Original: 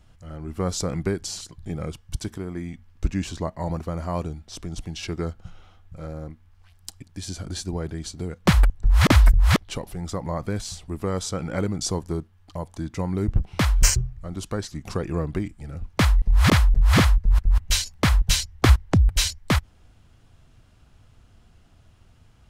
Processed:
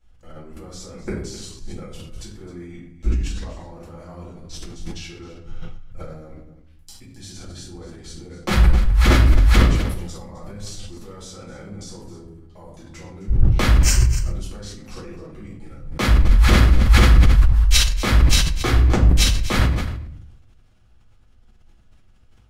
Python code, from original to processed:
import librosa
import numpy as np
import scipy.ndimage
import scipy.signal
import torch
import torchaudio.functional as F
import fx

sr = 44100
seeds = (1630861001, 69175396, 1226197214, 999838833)

p1 = fx.peak_eq(x, sr, hz=140.0, db=-3.0, octaves=0.96)
p2 = fx.level_steps(p1, sr, step_db=22)
p3 = p2 + fx.echo_single(p2, sr, ms=260, db=-15.0, dry=0)
p4 = fx.room_shoebox(p3, sr, seeds[0], volume_m3=96.0, walls='mixed', distance_m=2.2)
p5 = fx.sustainer(p4, sr, db_per_s=43.0)
y = p5 * 10.0 ** (-3.5 / 20.0)